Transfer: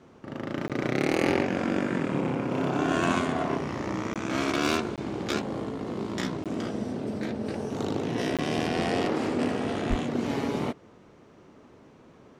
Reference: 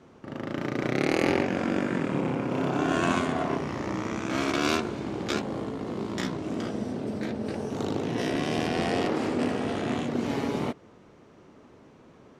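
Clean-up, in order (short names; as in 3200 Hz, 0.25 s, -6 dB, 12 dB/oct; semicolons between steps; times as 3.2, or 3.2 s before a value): clip repair -13 dBFS; 9.89–10.01 HPF 140 Hz 24 dB/oct; interpolate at 0.68/4.14/4.96/6.44/8.37, 17 ms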